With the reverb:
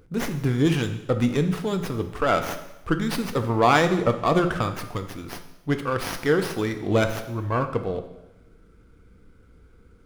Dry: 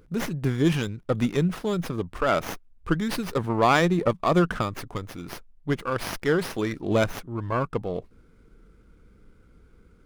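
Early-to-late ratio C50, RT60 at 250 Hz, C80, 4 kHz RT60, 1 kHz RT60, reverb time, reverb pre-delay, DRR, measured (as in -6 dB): 10.5 dB, 1.0 s, 13.0 dB, 0.95 s, 0.95 s, 0.95 s, 3 ms, 7.0 dB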